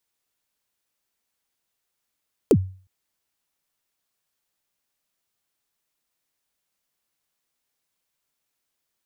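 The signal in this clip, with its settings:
synth kick length 0.36 s, from 510 Hz, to 94 Hz, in 60 ms, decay 0.41 s, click on, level −8.5 dB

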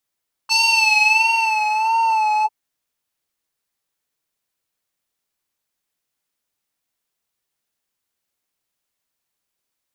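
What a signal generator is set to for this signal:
subtractive patch with vibrato A5, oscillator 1 square, interval +19 semitones, sub −27 dB, noise −23 dB, filter bandpass, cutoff 380 Hz, Q 2.2, filter envelope 3.5 octaves, filter decay 1.46 s, filter sustain 50%, attack 35 ms, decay 1.31 s, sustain −7 dB, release 0.05 s, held 1.95 s, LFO 1.5 Hz, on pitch 60 cents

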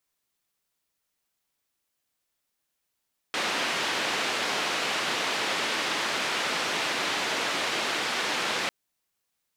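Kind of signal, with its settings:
band-limited noise 250–3,300 Hz, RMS −28.5 dBFS 5.35 s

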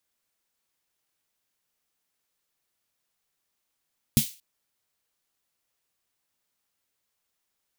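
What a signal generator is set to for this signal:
synth snare length 0.23 s, tones 140 Hz, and 220 Hz, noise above 2,700 Hz, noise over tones −6.5 dB, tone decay 0.10 s, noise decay 0.34 s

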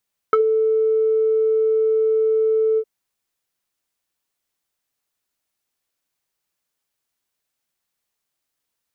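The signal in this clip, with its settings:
subtractive voice square A4 12 dB per octave, low-pass 510 Hz, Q 4.9, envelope 1.5 octaves, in 0.07 s, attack 1 ms, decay 0.09 s, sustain −11 dB, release 0.06 s, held 2.45 s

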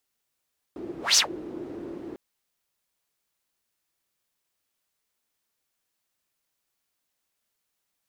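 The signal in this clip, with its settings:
pass-by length 1.40 s, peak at 0:00.41, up 0.18 s, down 0.12 s, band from 340 Hz, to 5,900 Hz, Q 5.4, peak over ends 20.5 dB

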